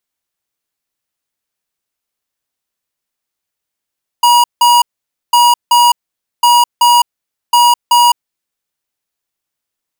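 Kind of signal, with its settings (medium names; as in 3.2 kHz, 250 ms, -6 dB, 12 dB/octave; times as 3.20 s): beep pattern square 960 Hz, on 0.21 s, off 0.17 s, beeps 2, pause 0.51 s, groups 4, -7.5 dBFS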